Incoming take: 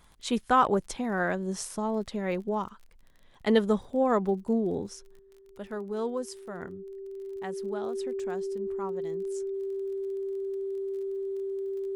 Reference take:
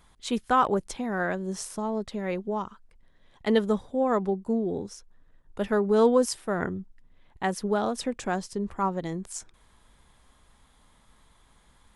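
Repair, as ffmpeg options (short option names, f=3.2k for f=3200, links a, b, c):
-af "adeclick=t=4,bandreject=f=390:w=30,asetnsamples=n=441:p=0,asendcmd='5.19 volume volume 11.5dB',volume=0dB"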